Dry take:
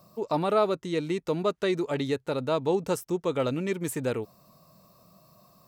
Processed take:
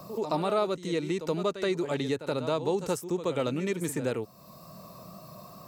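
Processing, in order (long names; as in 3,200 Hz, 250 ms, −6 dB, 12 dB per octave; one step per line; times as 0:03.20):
dynamic equaliser 7,000 Hz, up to +4 dB, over −53 dBFS, Q 0.82
in parallel at −0.5 dB: downward compressor, threshold −40 dBFS, peak gain reduction 20 dB
on the sum: echo ahead of the sound 76 ms −12 dB
tape wow and flutter 23 cents
multiband upward and downward compressor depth 40%
level −3.5 dB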